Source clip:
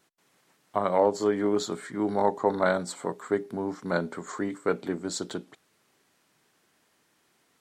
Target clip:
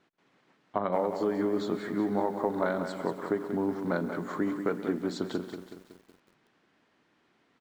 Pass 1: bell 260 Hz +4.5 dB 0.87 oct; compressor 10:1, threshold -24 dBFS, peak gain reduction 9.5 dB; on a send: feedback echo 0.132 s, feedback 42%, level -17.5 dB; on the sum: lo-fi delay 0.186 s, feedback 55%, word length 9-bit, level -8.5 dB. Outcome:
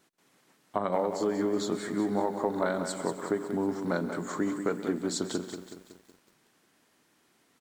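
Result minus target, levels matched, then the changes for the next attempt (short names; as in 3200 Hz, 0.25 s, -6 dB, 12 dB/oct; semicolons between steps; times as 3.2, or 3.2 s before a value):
4000 Hz band +5.0 dB
add first: LPF 3300 Hz 12 dB/oct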